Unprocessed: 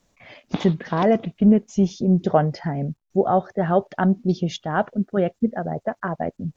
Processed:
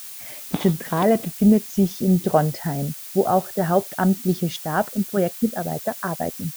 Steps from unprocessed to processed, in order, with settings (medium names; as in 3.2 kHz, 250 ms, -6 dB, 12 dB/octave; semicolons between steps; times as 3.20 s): added noise blue -37 dBFS